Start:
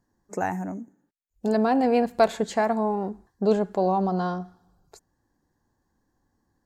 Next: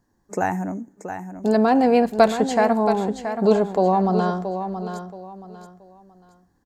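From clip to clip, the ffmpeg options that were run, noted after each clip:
ffmpeg -i in.wav -af "aecho=1:1:676|1352|2028:0.355|0.0993|0.0278,volume=4.5dB" out.wav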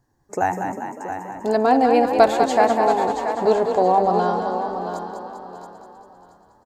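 ffmpeg -i in.wav -filter_complex "[0:a]equalizer=frequency=125:width_type=o:width=0.33:gain=11,equalizer=frequency=200:width_type=o:width=0.33:gain=-12,equalizer=frequency=800:width_type=o:width=0.33:gain=4,asplit=9[link_01][link_02][link_03][link_04][link_05][link_06][link_07][link_08][link_09];[link_02]adelay=198,afreqshift=32,volume=-7dB[link_10];[link_03]adelay=396,afreqshift=64,volume=-11.2dB[link_11];[link_04]adelay=594,afreqshift=96,volume=-15.3dB[link_12];[link_05]adelay=792,afreqshift=128,volume=-19.5dB[link_13];[link_06]adelay=990,afreqshift=160,volume=-23.6dB[link_14];[link_07]adelay=1188,afreqshift=192,volume=-27.8dB[link_15];[link_08]adelay=1386,afreqshift=224,volume=-31.9dB[link_16];[link_09]adelay=1584,afreqshift=256,volume=-36.1dB[link_17];[link_01][link_10][link_11][link_12][link_13][link_14][link_15][link_16][link_17]amix=inputs=9:normalize=0" out.wav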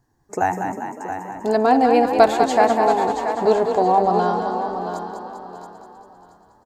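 ffmpeg -i in.wav -af "bandreject=frequency=550:width=12,volume=1dB" out.wav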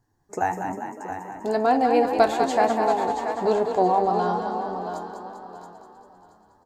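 ffmpeg -i in.wav -af "flanger=delay=9.3:depth=3.6:regen=65:speed=1.1:shape=sinusoidal" out.wav

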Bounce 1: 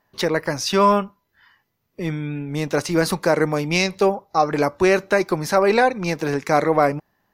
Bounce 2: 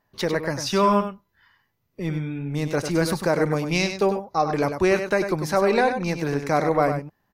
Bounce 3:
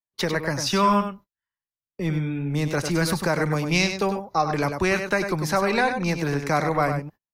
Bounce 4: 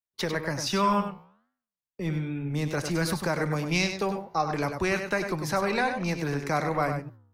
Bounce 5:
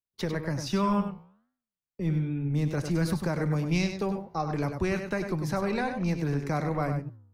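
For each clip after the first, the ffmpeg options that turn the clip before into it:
ffmpeg -i in.wav -af "lowshelf=frequency=170:gain=6.5,aecho=1:1:98:0.398,volume=-4.5dB" out.wav
ffmpeg -i in.wav -filter_complex "[0:a]agate=range=-36dB:threshold=-43dB:ratio=16:detection=peak,acrossover=split=230|800|2600[link_01][link_02][link_03][link_04];[link_02]acompressor=threshold=-30dB:ratio=6[link_05];[link_01][link_05][link_03][link_04]amix=inputs=4:normalize=0,volume=2.5dB" out.wav
ffmpeg -i in.wav -af "flanger=delay=9.8:depth=5.6:regen=-88:speed=1.3:shape=sinusoidal" out.wav
ffmpeg -i in.wav -af "lowshelf=frequency=380:gain=11.5,volume=-7dB" out.wav

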